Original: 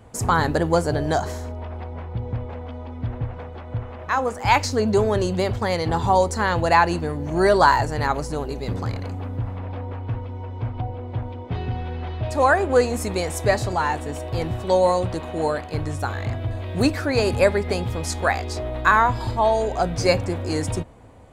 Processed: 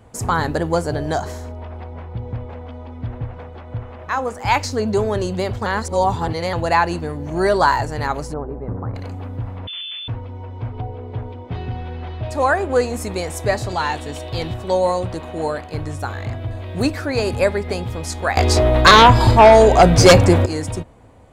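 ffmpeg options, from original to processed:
-filter_complex "[0:a]asplit=3[s0][s1][s2];[s0]afade=t=out:st=8.32:d=0.02[s3];[s1]lowpass=f=1400:w=0.5412,lowpass=f=1400:w=1.3066,afade=t=in:st=8.32:d=0.02,afade=t=out:st=8.94:d=0.02[s4];[s2]afade=t=in:st=8.94:d=0.02[s5];[s3][s4][s5]amix=inputs=3:normalize=0,asettb=1/sr,asplit=3[s6][s7][s8];[s6]atrim=end=9.674[s9];[s7]atrim=start=9.67:end=10.08,asetpts=PTS-STARTPTS,afade=t=in:d=0.004:c=qsin,afade=t=out:st=0.406:d=0.004:c=qsin,lowpass=f=3100:t=q:w=0.5098,lowpass=f=3100:t=q:w=0.6013,lowpass=f=3100:t=q:w=0.9,lowpass=f=3100:t=q:w=2.563,afreqshift=-3600[s10];[s8]atrim=start=10.076[s11];[s9][s10]acrossfade=d=0.004:c1=hsin:c2=qsin[s12];[s12][s11]acrossfade=d=0.004:c1=qsin:c2=hsin,asettb=1/sr,asplit=3[s13][s14][s15];[s13]atrim=end=10.724[s16];[s14]atrim=start=10.72:end=11.33,asetpts=PTS-STARTPTS,afade=t=in:d=0.004:c=qsin,afade=t=out:st=0.606:d=0.004:c=qsin,aeval=exprs='val(0)+0.0112*sin(2*PI*430*n/s)':c=same[s17];[s15]atrim=start=11.326[s18];[s16][s17]acrossfade=d=0.004:c1=hsin:c2=qsin[s19];[s19][s18]acrossfade=d=0.004:c1=qsin:c2=hsin,asettb=1/sr,asplit=3[s20][s21][s22];[s20]atrim=end=13.694[s23];[s21]atrim=start=13.69:end=14.54,asetpts=PTS-STARTPTS,afade=t=in:d=0.004:c=qsin,afade=t=out:st=0.846:d=0.004:c=qsin,equalizer=f=3700:t=o:w=1.1:g=10[s24];[s22]atrim=start=14.536[s25];[s23][s24]acrossfade=d=0.004:c1=hsin:c2=qsin[s26];[s26][s25]acrossfade=d=0.004:c1=qsin:c2=hsin,asettb=1/sr,asplit=3[s27][s28][s29];[s27]atrim=end=18.374[s30];[s28]atrim=start=18.37:end=20.46,asetpts=PTS-STARTPTS,afade=t=in:d=0.004:c=qsin,afade=t=out:st=2.086:d=0.004:c=qsin,aeval=exprs='0.708*sin(PI/2*3.16*val(0)/0.708)':c=same[s31];[s29]atrim=start=20.456[s32];[s30][s31]acrossfade=d=0.004:c1=hsin:c2=qsin[s33];[s33][s32]acrossfade=d=0.004:c1=qsin:c2=hsin,asplit=3[s34][s35][s36];[s34]atrim=end=5.662[s37];[s35]atrim=start=5.658:end=6.532,asetpts=PTS-STARTPTS,areverse[s38];[s36]atrim=start=6.528[s39];[s37][s38]acrossfade=d=0.004:c1=hsin:c2=hsin[s40];[s40][s39]acrossfade=d=0.004:c1=hsin:c2=hsin"

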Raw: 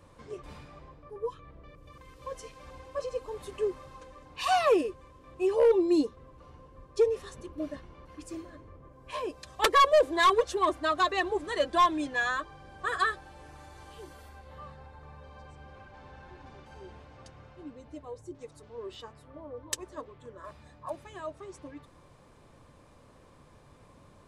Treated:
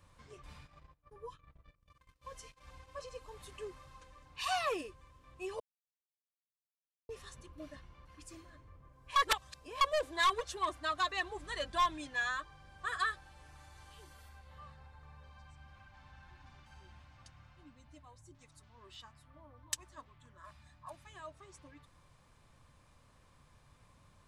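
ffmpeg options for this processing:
-filter_complex "[0:a]asplit=3[s0][s1][s2];[s0]afade=t=out:st=0.53:d=0.02[s3];[s1]agate=range=0.0891:threshold=0.00316:ratio=16:release=100:detection=peak,afade=t=in:st=0.53:d=0.02,afade=t=out:st=2.9:d=0.02[s4];[s2]afade=t=in:st=2.9:d=0.02[s5];[s3][s4][s5]amix=inputs=3:normalize=0,asettb=1/sr,asplit=3[s6][s7][s8];[s6]atrim=end=11.384[s9];[s7]atrim=start=11.38:end=11.96,asetpts=PTS-STARTPTS,afade=t=in:d=0.004:c=qsin,afade=t=out:st=0.576:d=0.004:c=qsin,aeval=exprs='val(0)+0.00447*(sin(2*PI*50*n/s)+sin(2*PI*2*50*n/s)/2+sin(2*PI*3*50*n/s)/3+sin(2*PI*4*50*n/s)/4+sin(2*PI*5*50*n/s)/5)':c=same[s10];[s8]atrim=start=11.956[s11];[s9][s10]acrossfade=d=0.004:c1=hsin:c2=qsin[s12];[s12][s11]acrossfade=d=0.004:c1=qsin:c2=hsin,asettb=1/sr,asplit=3[s13][s14][s15];[s13]atrim=end=15.314[s16];[s14]atrim=start=15.31:end=21.07,asetpts=PTS-STARTPTS,afade=t=in:d=0.004:c=qsin,afade=t=out:st=5.756:d=0.004:c=qsin,equalizer=f=460:t=o:w=0.37:g=-14[s17];[s15]atrim=start=21.066[s18];[s16][s17]acrossfade=d=0.004:c1=hsin:c2=qsin[s19];[s19][s18]acrossfade=d=0.004:c1=qsin:c2=hsin,asplit=5[s20][s21][s22][s23][s24];[s20]atrim=end=5.6,asetpts=PTS-STARTPTS,afade=t=out:st=5.596:d=0.004:c=hsin[s25];[s21]atrim=start=5.6:end=7.09,asetpts=PTS-STARTPTS,volume=0[s26];[s22]atrim=start=7.09:end=9.162,asetpts=PTS-STARTPTS,afade=t=in:d=0.004:c=hsin[s27];[s23]atrim=start=9.158:end=9.812,asetpts=PTS-STARTPTS,areverse[s28];[s24]atrim=start=9.808[s29];[s25][s26][s27]concat=n=3:v=0:a=1[s30];[s30][s28]acrossfade=d=0.004:c1=hsin:c2=hsin[s31];[s31][s29]acrossfade=d=0.004:c1=hsin:c2=hsin,equalizer=f=390:t=o:w=2.1:g=-12,volume=0.668"

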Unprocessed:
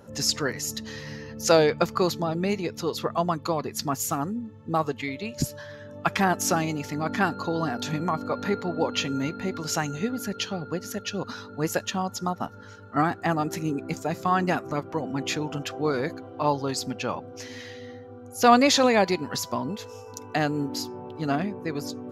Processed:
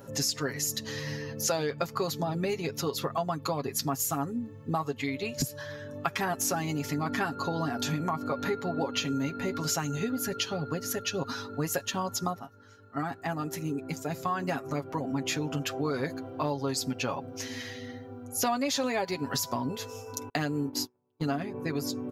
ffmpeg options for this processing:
-filter_complex "[0:a]asettb=1/sr,asplit=3[s0][s1][s2];[s0]atrim=end=20.294[s3];[s1]atrim=start=20.29:end=21.54,asetpts=PTS-STARTPTS,afade=t=in:d=0.004:c=qsin,afade=t=out:st=1.246:d=0.004:c=qsin,agate=range=0.0112:threshold=0.0224:ratio=16:release=100:detection=peak[s4];[s2]atrim=start=21.536[s5];[s3][s4]acrossfade=d=0.004:c1=hsin:c2=qsin[s6];[s6][s5]acrossfade=d=0.004:c1=qsin:c2=hsin,asplit=2[s7][s8];[s7]atrim=end=12.4,asetpts=PTS-STARTPTS,afade=t=out:st=12.396:d=0.004:c=hsin:silence=0.211349[s9];[s8]atrim=start=12.4,asetpts=PTS-STARTPTS,afade=t=in:d=3.63:silence=0.211349[s10];[s9][s10]concat=n=2:v=0:a=1,highshelf=f=11000:g=11,aecho=1:1:7.3:0.62,acompressor=threshold=0.0447:ratio=5"

